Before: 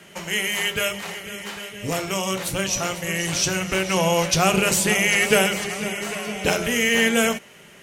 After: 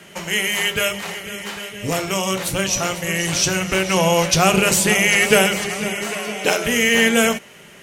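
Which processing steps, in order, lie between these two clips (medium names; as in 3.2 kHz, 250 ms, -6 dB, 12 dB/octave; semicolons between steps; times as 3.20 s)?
6.06–6.64 s: high-pass 160 Hz -> 330 Hz 12 dB/octave; trim +3.5 dB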